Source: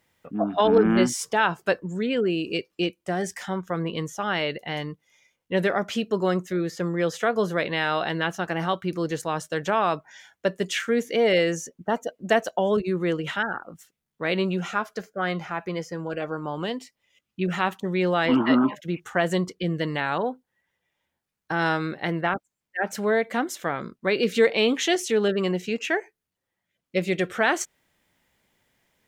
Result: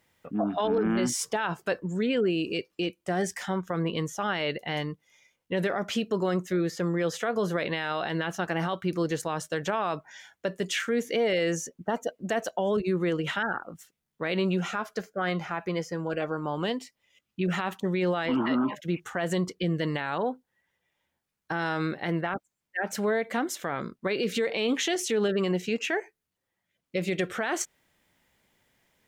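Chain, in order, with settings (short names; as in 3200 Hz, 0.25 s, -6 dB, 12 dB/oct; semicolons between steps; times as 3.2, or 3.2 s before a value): limiter -18.5 dBFS, peak gain reduction 10.5 dB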